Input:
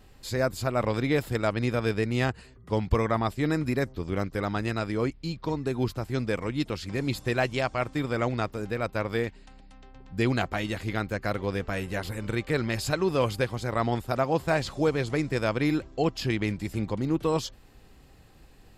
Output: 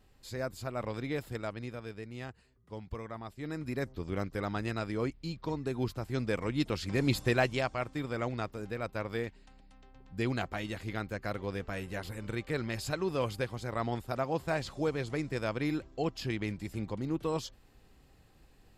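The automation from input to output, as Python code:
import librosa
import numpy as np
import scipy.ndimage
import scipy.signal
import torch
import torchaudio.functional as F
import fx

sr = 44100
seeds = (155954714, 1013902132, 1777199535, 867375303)

y = fx.gain(x, sr, db=fx.line((1.35, -10.0), (1.88, -16.5), (3.26, -16.5), (3.92, -5.5), (5.97, -5.5), (7.17, 1.0), (7.87, -7.0)))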